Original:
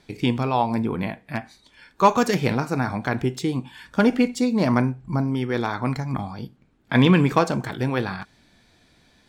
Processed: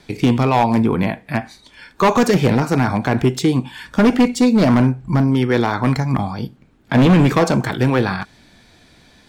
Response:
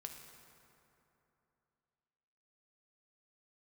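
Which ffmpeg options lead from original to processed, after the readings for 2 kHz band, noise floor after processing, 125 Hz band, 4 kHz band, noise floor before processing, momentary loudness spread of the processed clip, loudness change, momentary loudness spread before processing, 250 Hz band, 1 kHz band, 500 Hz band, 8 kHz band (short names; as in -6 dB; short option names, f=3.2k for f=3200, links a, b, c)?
+4.5 dB, -51 dBFS, +7.0 dB, +4.5 dB, -60 dBFS, 11 LU, +6.0 dB, 13 LU, +7.0 dB, +4.0 dB, +6.0 dB, +7.0 dB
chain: -filter_complex "[0:a]acrossover=split=700|740[a][b][c];[c]alimiter=limit=-20.5dB:level=0:latency=1:release=62[d];[a][b][d]amix=inputs=3:normalize=0,asoftclip=type=hard:threshold=-16.5dB,volume=8.5dB"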